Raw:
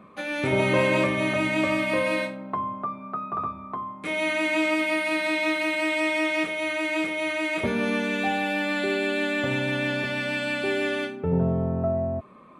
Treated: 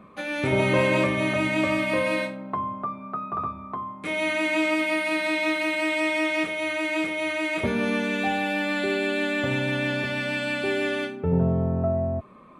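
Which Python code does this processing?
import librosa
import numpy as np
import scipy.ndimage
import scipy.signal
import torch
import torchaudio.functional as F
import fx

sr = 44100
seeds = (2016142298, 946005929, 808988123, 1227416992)

y = fx.low_shelf(x, sr, hz=70.0, db=8.5)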